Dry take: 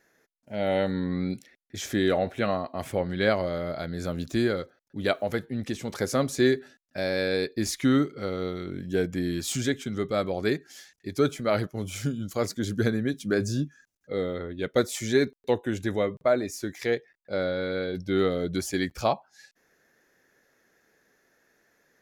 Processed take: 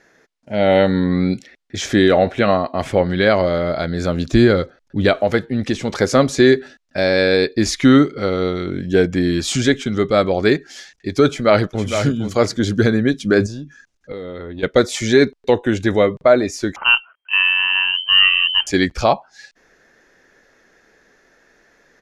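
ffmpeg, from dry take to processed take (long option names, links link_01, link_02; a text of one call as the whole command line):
ffmpeg -i in.wav -filter_complex "[0:a]asettb=1/sr,asplit=3[link_01][link_02][link_03];[link_01]atrim=end=4.324[link_04];[link_02]atrim=start=4.32:end=5.19,asetpts=PTS-STARTPTS,afade=type=in:duration=0.004:curve=qsin,afade=type=out:start_time=0.866:duration=0.004:curve=qsin,lowshelf=frequency=180:gain=8[link_05];[link_03]atrim=start=5.186[link_06];[link_04][link_05]acrossfade=duration=0.004:curve1=hsin:curve2=qsin[link_07];[link_07][link_06]acrossfade=duration=0.004:curve1=qsin:curve2=hsin,asplit=2[link_08][link_09];[link_09]afade=type=in:start_time=11.27:duration=0.01,afade=type=out:start_time=11.88:duration=0.01,aecho=0:1:460|920:0.398107|0.0597161[link_10];[link_08][link_10]amix=inputs=2:normalize=0,asettb=1/sr,asplit=3[link_11][link_12][link_13];[link_11]atrim=end=13.464[link_14];[link_12]atrim=start=13.46:end=14.63,asetpts=PTS-STARTPTS,afade=type=in:duration=0.004:curve=qsin,afade=type=out:start_time=1.166:duration=0.004:curve=qsin,acompressor=threshold=-36dB:ratio=16:attack=3.2:release=140:knee=1:detection=peak[link_15];[link_13]atrim=start=14.626[link_16];[link_14][link_15]acrossfade=duration=0.004:curve1=hsin:curve2=qsin[link_17];[link_17][link_16]acrossfade=duration=0.004:curve1=qsin:curve2=hsin,asettb=1/sr,asplit=3[link_18][link_19][link_20];[link_18]atrim=end=16.764[link_21];[link_19]atrim=start=16.76:end=18.67,asetpts=PTS-STARTPTS,afade=type=in:duration=0.004:curve=qsin,afade=type=out:start_time=1.906:duration=0.004:curve=qsin,lowpass=frequency=2700:width_type=q:width=0.5098,lowpass=frequency=2700:width_type=q:width=0.6013,lowpass=frequency=2700:width_type=q:width=0.9,lowpass=frequency=2700:width_type=q:width=2.563,afreqshift=-3200[link_22];[link_20]atrim=start=18.666[link_23];[link_21][link_22]acrossfade=duration=0.004:curve1=hsin:curve2=qsin[link_24];[link_24][link_23]acrossfade=duration=0.004:curve1=qsin:curve2=hsin,asubboost=boost=3:cutoff=53,lowpass=6100,alimiter=level_in=13dB:limit=-1dB:release=50:level=0:latency=1,volume=-1dB" out.wav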